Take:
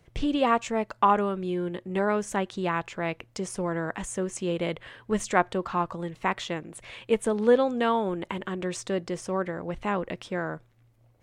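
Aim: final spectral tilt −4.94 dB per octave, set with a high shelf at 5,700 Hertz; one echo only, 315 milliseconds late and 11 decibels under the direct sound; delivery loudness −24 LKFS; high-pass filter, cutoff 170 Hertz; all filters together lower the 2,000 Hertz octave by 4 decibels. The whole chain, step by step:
high-pass filter 170 Hz
parametric band 2,000 Hz −4.5 dB
high-shelf EQ 5,700 Hz −7.5 dB
single-tap delay 315 ms −11 dB
level +5 dB

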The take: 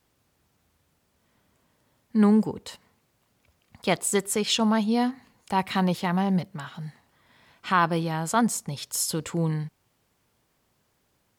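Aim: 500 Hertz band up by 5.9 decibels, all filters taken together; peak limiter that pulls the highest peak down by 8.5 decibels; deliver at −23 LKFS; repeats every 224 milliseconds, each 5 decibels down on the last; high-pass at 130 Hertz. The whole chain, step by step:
high-pass filter 130 Hz
parametric band 500 Hz +7.5 dB
brickwall limiter −13.5 dBFS
repeating echo 224 ms, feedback 56%, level −5 dB
level +2 dB

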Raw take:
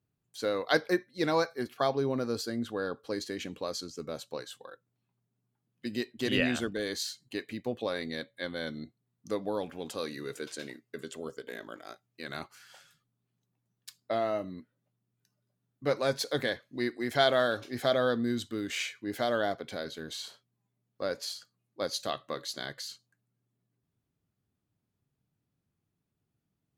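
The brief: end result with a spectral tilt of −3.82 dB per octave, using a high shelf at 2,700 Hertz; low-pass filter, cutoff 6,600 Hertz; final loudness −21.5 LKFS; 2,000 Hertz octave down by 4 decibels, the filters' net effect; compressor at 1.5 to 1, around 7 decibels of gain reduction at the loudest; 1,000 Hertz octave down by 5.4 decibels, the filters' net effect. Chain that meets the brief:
low-pass filter 6,600 Hz
parametric band 1,000 Hz −8.5 dB
parametric band 2,000 Hz −4 dB
high-shelf EQ 2,700 Hz +5 dB
downward compressor 1.5 to 1, threshold −42 dBFS
level +18 dB

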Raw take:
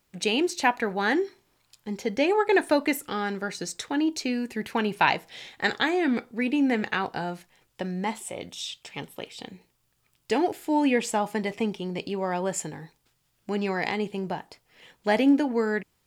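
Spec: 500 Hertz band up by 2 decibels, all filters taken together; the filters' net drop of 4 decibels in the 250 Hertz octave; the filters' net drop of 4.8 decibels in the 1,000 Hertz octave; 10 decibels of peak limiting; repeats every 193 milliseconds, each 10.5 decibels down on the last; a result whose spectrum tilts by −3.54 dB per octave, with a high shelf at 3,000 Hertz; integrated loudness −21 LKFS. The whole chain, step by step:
parametric band 250 Hz −7 dB
parametric band 500 Hz +7 dB
parametric band 1,000 Hz −8.5 dB
high-shelf EQ 3,000 Hz −4 dB
brickwall limiter −18.5 dBFS
repeating echo 193 ms, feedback 30%, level −10.5 dB
level +9 dB

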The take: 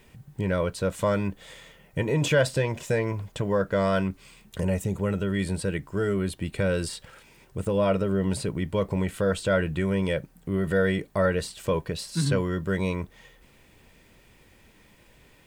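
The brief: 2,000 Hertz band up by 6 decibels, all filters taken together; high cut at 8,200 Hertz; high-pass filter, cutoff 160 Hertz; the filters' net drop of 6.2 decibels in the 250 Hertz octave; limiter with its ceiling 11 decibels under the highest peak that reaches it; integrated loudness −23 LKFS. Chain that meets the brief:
high-pass filter 160 Hz
low-pass filter 8,200 Hz
parametric band 250 Hz −7.5 dB
parametric band 2,000 Hz +8 dB
level +8.5 dB
brickwall limiter −10.5 dBFS

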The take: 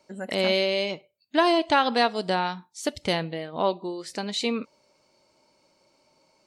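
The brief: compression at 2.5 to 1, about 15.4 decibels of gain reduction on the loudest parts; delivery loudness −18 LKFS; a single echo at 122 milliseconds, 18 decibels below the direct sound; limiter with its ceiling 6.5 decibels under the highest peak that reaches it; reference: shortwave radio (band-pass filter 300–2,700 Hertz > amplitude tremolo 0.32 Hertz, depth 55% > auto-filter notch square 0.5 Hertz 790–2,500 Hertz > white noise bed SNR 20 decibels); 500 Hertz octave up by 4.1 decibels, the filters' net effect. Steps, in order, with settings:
parametric band 500 Hz +6 dB
downward compressor 2.5 to 1, threshold −38 dBFS
brickwall limiter −27 dBFS
band-pass filter 300–2,700 Hz
single-tap delay 122 ms −18 dB
amplitude tremolo 0.32 Hz, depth 55%
auto-filter notch square 0.5 Hz 790–2,500 Hz
white noise bed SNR 20 dB
level +27 dB

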